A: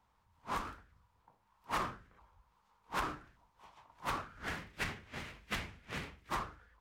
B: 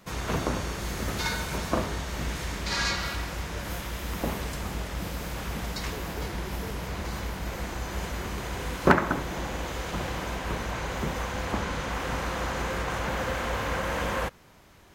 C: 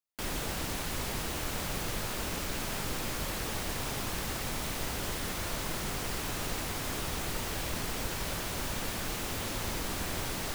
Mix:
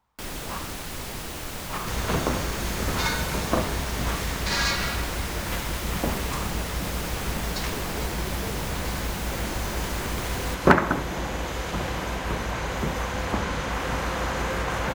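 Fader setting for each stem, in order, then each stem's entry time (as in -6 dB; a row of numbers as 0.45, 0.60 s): +1.0, +3.0, +0.5 dB; 0.00, 1.80, 0.00 s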